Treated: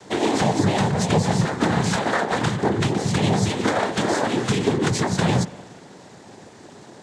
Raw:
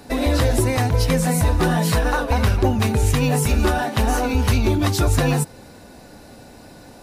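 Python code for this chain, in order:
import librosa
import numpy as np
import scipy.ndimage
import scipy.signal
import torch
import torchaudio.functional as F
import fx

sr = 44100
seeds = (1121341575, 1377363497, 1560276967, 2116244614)

y = fx.rider(x, sr, range_db=10, speed_s=0.5)
y = fx.noise_vocoder(y, sr, seeds[0], bands=6)
y = fx.rev_spring(y, sr, rt60_s=1.8, pass_ms=(59,), chirp_ms=50, drr_db=16.5)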